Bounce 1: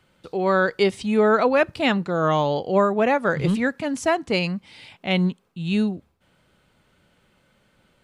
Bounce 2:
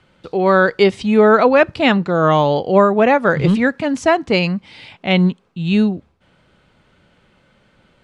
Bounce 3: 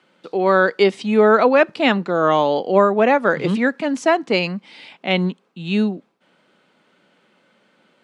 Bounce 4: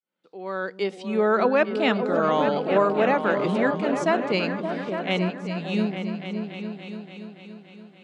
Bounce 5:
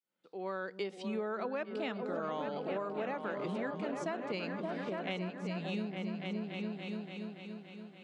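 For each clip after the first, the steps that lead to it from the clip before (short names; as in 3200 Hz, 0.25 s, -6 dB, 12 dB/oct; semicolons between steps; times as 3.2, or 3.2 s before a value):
air absorption 72 m; gain +7 dB
HPF 200 Hz 24 dB/oct; gain -2 dB
opening faded in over 1.51 s; repeats that get brighter 0.286 s, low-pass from 200 Hz, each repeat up 2 oct, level -3 dB; gain -6.5 dB
compressor 6:1, threshold -31 dBFS, peak gain reduction 15.5 dB; gain -3.5 dB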